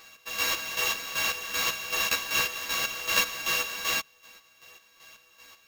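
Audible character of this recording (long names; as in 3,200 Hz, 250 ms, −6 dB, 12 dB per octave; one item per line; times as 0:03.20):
a buzz of ramps at a fixed pitch in blocks of 16 samples
chopped level 2.6 Hz, depth 65%, duty 40%
aliases and images of a low sample rate 9,400 Hz, jitter 0%
a shimmering, thickened sound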